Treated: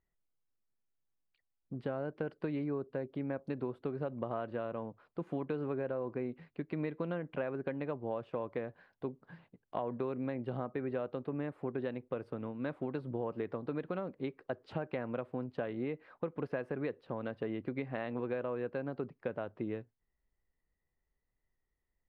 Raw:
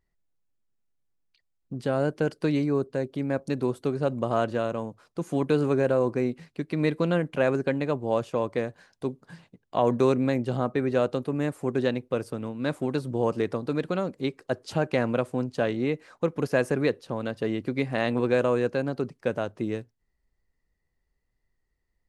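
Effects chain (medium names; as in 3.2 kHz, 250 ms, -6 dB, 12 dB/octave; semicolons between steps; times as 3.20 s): bass shelf 340 Hz -5.5 dB; compression, threshold -29 dBFS, peak gain reduction 10.5 dB; distance through air 460 m; trim -2.5 dB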